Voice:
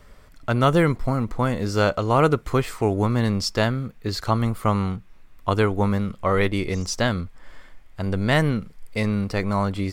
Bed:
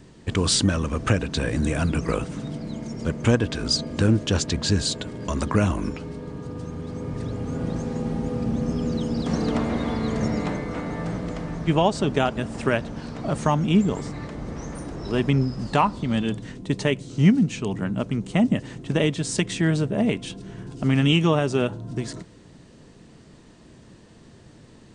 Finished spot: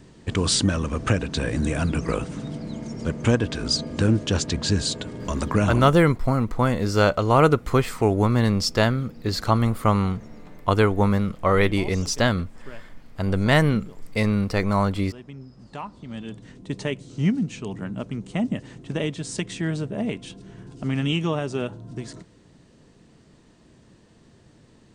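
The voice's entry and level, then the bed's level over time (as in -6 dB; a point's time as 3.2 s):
5.20 s, +1.5 dB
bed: 5.81 s -0.5 dB
6.06 s -20 dB
15.37 s -20 dB
16.76 s -5 dB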